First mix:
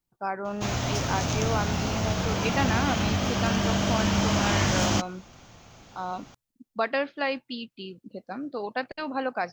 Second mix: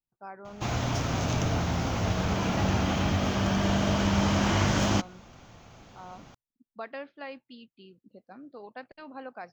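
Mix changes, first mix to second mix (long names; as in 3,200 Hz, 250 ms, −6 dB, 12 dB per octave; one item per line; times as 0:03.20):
speech −12.0 dB
master: add high-shelf EQ 3,700 Hz −7 dB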